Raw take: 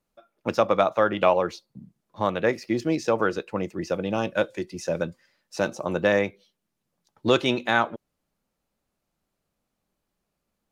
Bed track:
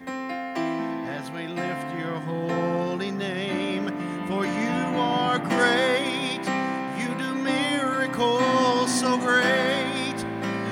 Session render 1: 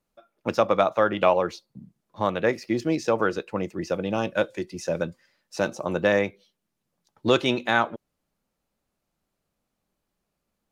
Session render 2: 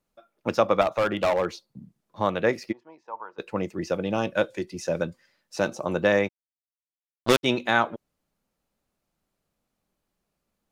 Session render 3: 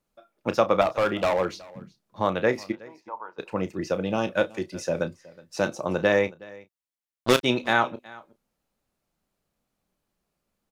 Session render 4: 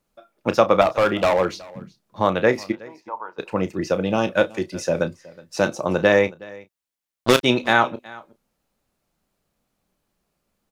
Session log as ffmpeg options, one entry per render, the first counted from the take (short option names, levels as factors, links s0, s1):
-af anull
-filter_complex "[0:a]asettb=1/sr,asplit=3[s0][s1][s2];[s0]atrim=end=0.814[s3];[s1]atrim=start=0.81:end=1.46,asetpts=PTS-STARTPTS,afade=t=in:d=0.004:c=qsin,afade=t=out:st=0.646:d=0.004:c=qsin,volume=7.94,asoftclip=hard,volume=0.126[s4];[s2]atrim=start=1.456[s5];[s3][s4]acrossfade=d=0.004:c1=hsin:c2=qsin[s6];[s6][s5]acrossfade=d=0.004:c1=qsin:c2=hsin,asplit=3[s7][s8][s9];[s7]afade=t=out:st=2.71:d=0.02[s10];[s8]bandpass=f=950:t=q:w=9.5,afade=t=in:st=2.71:d=0.02,afade=t=out:st=3.38:d=0.02[s11];[s9]afade=t=in:st=3.38:d=0.02[s12];[s10][s11][s12]amix=inputs=3:normalize=0,asplit=3[s13][s14][s15];[s13]afade=t=out:st=6.27:d=0.02[s16];[s14]acrusher=bits=2:mix=0:aa=0.5,afade=t=in:st=6.27:d=0.02,afade=t=out:st=7.43:d=0.02[s17];[s15]afade=t=in:st=7.43:d=0.02[s18];[s16][s17][s18]amix=inputs=3:normalize=0"
-filter_complex "[0:a]asplit=2[s0][s1];[s1]adelay=32,volume=0.251[s2];[s0][s2]amix=inputs=2:normalize=0,aecho=1:1:369:0.0794"
-af "volume=1.78,alimiter=limit=0.794:level=0:latency=1"